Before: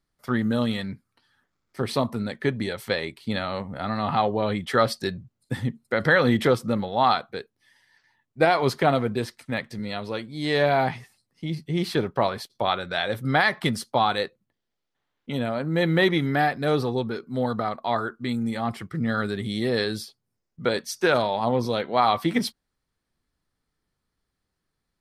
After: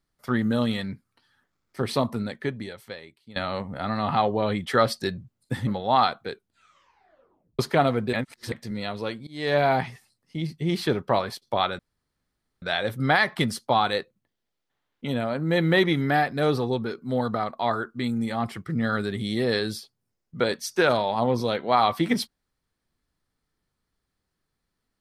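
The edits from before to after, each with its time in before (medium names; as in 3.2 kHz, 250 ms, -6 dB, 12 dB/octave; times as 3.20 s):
2.16–3.36 s: fade out quadratic, to -18.5 dB
5.67–6.75 s: delete
7.38 s: tape stop 1.29 s
9.21–9.60 s: reverse
10.35–10.67 s: fade in, from -23.5 dB
12.87 s: insert room tone 0.83 s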